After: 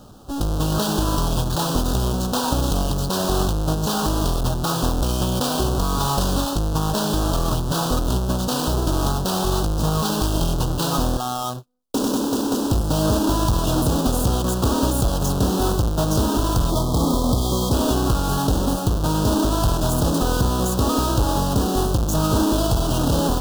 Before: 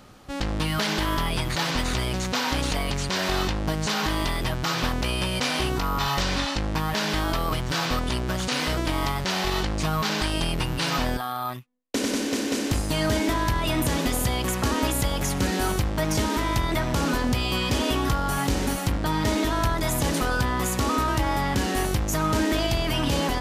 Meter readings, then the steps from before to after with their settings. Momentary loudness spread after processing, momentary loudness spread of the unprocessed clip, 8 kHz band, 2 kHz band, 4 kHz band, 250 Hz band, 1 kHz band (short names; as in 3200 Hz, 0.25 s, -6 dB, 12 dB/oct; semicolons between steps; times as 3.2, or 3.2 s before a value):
3 LU, 3 LU, +4.0 dB, -7.5 dB, 0.0 dB, +5.0 dB, +2.5 dB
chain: half-waves squared off; spectral gain 16.7–17.72, 1300–3100 Hz -16 dB; Butterworth band-stop 2100 Hz, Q 1.1